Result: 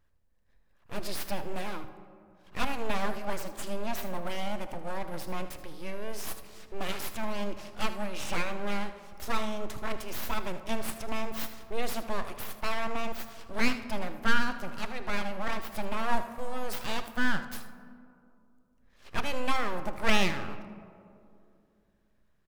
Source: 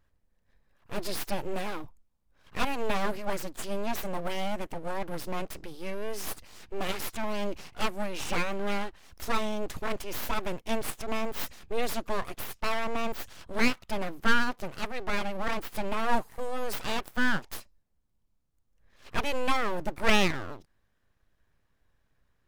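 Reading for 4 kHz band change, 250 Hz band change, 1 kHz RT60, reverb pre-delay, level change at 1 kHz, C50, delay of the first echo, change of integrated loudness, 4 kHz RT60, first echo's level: -1.5 dB, -1.5 dB, 2.3 s, 19 ms, -1.5 dB, 10.0 dB, 78 ms, -2.0 dB, 0.95 s, -14.0 dB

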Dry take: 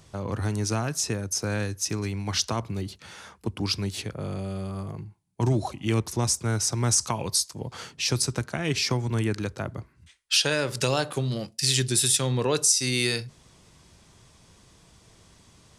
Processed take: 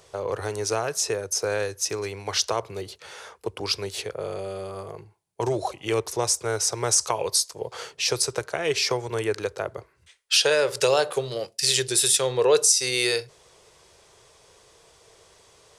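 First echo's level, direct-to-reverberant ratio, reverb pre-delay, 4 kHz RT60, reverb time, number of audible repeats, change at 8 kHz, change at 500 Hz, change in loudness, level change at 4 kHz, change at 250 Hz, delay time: none, none, none, none, none, none, +2.0 dB, +7.0 dB, +2.0 dB, +2.0 dB, -6.0 dB, none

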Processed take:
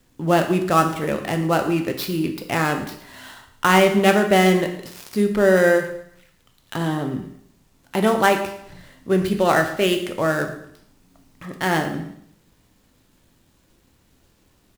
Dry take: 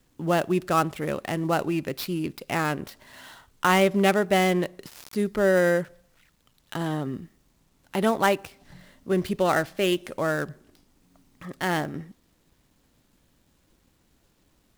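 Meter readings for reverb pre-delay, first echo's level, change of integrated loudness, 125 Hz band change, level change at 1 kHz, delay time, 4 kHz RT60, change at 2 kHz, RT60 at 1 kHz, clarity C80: 5 ms, -17.0 dB, +5.5 dB, +5.0 dB, +5.5 dB, 0.113 s, 0.65 s, +5.5 dB, 0.70 s, 11.5 dB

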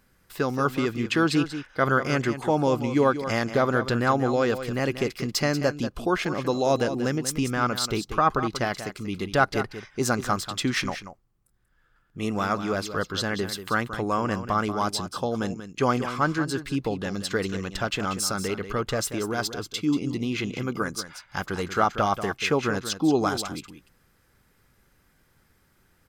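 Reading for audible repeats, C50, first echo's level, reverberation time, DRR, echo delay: 1, none, -11.0 dB, none, none, 0.186 s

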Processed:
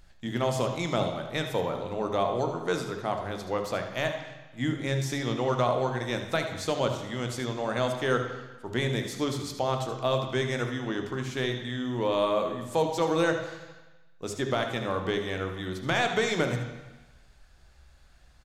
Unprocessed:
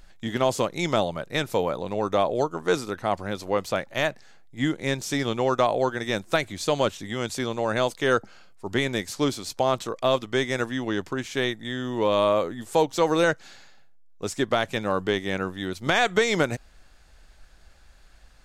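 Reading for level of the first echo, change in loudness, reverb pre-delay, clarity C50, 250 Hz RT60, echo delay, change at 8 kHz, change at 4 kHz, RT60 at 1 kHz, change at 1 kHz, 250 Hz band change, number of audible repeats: -11.0 dB, -4.0 dB, 9 ms, 6.0 dB, 1.0 s, 75 ms, -4.5 dB, -4.0 dB, 1.2 s, -4.0 dB, -3.5 dB, 1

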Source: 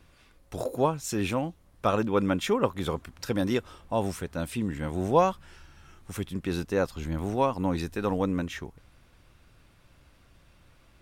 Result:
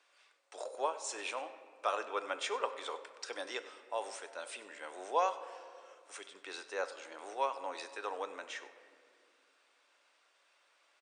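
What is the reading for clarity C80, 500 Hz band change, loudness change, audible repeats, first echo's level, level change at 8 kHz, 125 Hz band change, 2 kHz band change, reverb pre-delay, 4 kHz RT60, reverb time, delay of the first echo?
12.5 dB, -11.5 dB, -10.5 dB, 1, -18.0 dB, -5.0 dB, under -40 dB, -5.0 dB, 5 ms, 1.2 s, 2.2 s, 97 ms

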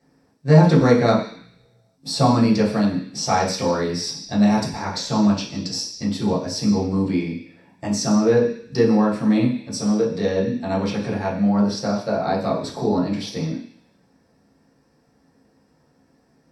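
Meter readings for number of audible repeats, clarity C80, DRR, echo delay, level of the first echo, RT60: none, 10.0 dB, -7.0 dB, none, none, 0.50 s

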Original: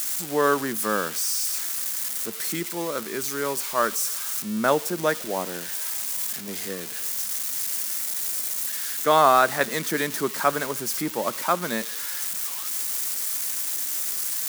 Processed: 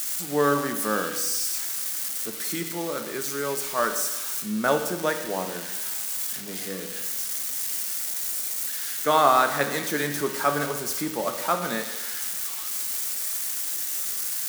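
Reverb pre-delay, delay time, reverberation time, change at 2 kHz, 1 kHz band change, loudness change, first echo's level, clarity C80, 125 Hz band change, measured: 7 ms, none, 1.1 s, -1.0 dB, -1.5 dB, -1.0 dB, none, 10.0 dB, +1.0 dB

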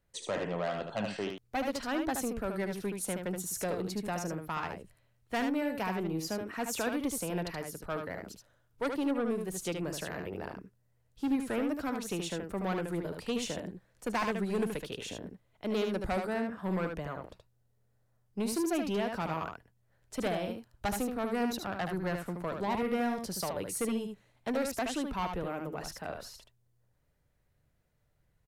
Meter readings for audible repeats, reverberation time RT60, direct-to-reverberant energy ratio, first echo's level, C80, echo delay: 1, none, none, -5.5 dB, none, 75 ms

